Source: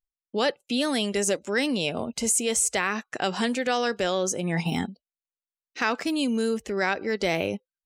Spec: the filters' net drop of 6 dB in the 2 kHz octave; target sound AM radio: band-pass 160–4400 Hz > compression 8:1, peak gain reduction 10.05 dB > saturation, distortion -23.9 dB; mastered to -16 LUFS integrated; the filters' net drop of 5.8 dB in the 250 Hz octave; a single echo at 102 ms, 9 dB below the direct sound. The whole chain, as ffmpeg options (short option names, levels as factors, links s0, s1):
-af "highpass=160,lowpass=4400,equalizer=f=250:t=o:g=-6,equalizer=f=2000:t=o:g=-7.5,aecho=1:1:102:0.355,acompressor=threshold=0.0282:ratio=8,asoftclip=threshold=0.0708,volume=10.6"